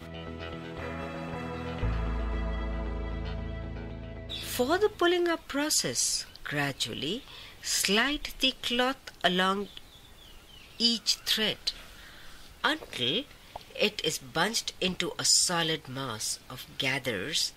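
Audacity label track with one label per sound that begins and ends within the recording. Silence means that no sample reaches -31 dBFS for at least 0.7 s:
10.800000	11.710000	sound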